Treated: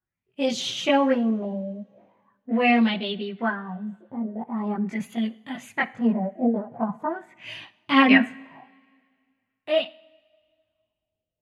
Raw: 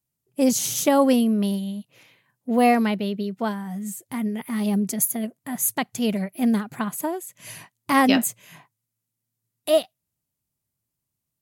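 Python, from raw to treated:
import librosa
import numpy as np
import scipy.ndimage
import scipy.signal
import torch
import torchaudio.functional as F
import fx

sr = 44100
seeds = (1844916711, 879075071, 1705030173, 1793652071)

y = fx.chorus_voices(x, sr, voices=6, hz=0.26, base_ms=20, depth_ms=3.1, mix_pct=60)
y = fx.filter_lfo_lowpass(y, sr, shape='sine', hz=0.42, low_hz=570.0, high_hz=3500.0, q=4.2)
y = fx.rev_double_slope(y, sr, seeds[0], early_s=0.52, late_s=2.1, knee_db=-17, drr_db=15.0)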